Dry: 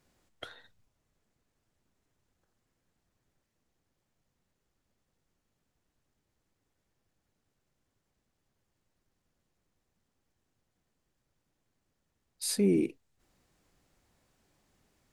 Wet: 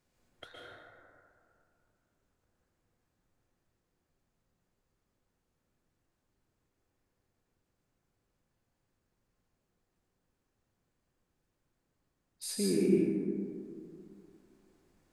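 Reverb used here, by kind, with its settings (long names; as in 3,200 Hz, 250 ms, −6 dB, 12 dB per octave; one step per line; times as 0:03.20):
dense smooth reverb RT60 2.5 s, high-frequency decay 0.3×, pre-delay 105 ms, DRR −5 dB
level −6.5 dB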